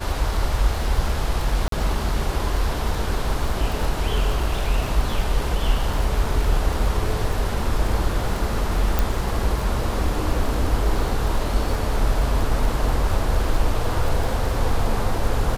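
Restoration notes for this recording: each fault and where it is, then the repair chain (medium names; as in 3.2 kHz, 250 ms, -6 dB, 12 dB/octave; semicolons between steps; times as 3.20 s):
crackle 35 per s -26 dBFS
1.68–1.72 s: dropout 43 ms
8.99 s: pop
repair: de-click; interpolate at 1.68 s, 43 ms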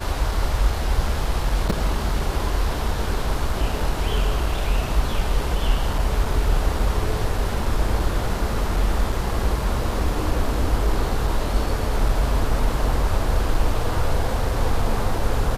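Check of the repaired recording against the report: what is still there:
nothing left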